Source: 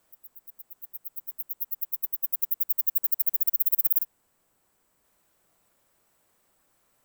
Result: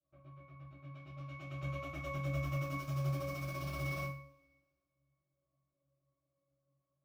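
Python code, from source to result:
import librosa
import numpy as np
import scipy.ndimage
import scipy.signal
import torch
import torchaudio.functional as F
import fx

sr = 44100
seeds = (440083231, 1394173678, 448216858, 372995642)

y = fx.leveller(x, sr, passes=5)
y = fx.env_lowpass(y, sr, base_hz=1300.0, full_db=-11.5)
y = fx.octave_resonator(y, sr, note='C#', decay_s=0.48)
y = fx.rev_double_slope(y, sr, seeds[0], early_s=0.41, late_s=1.8, knee_db=-27, drr_db=-8.5)
y = F.gain(torch.from_numpy(y), 7.5).numpy()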